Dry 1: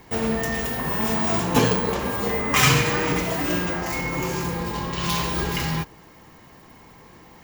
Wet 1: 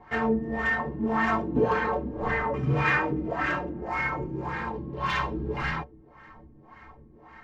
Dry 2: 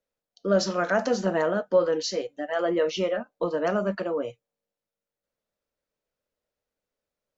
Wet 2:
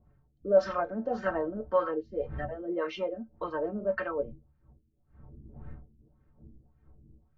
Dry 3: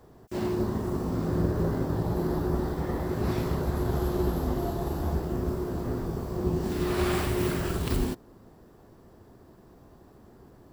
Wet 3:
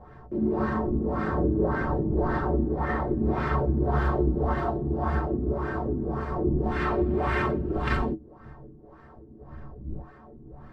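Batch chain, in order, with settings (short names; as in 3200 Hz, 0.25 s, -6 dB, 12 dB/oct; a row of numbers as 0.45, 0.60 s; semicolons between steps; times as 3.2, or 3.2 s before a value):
wind noise 100 Hz -41 dBFS; tilt shelf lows -7.5 dB, about 1400 Hz; LFO low-pass sine 1.8 Hz 280–1700 Hz; metallic resonator 66 Hz, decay 0.21 s, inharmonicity 0.03; normalise peaks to -12 dBFS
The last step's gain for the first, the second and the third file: +5.5, +4.5, +13.5 dB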